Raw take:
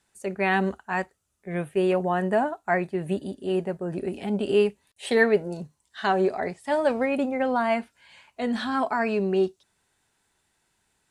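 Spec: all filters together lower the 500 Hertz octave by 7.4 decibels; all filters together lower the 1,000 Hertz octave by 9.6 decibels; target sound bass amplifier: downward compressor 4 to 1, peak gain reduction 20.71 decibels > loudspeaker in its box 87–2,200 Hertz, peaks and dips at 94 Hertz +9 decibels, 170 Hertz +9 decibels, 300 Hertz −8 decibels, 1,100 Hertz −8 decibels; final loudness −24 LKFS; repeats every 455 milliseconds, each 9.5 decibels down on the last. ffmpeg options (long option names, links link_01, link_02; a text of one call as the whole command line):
ffmpeg -i in.wav -af "equalizer=frequency=500:width_type=o:gain=-6.5,equalizer=frequency=1000:width_type=o:gain=-8.5,aecho=1:1:455|910|1365|1820:0.335|0.111|0.0365|0.012,acompressor=threshold=-44dB:ratio=4,highpass=frequency=87:width=0.5412,highpass=frequency=87:width=1.3066,equalizer=frequency=94:width_type=q:width=4:gain=9,equalizer=frequency=170:width_type=q:width=4:gain=9,equalizer=frequency=300:width_type=q:width=4:gain=-8,equalizer=frequency=1100:width_type=q:width=4:gain=-8,lowpass=frequency=2200:width=0.5412,lowpass=frequency=2200:width=1.3066,volume=19.5dB" out.wav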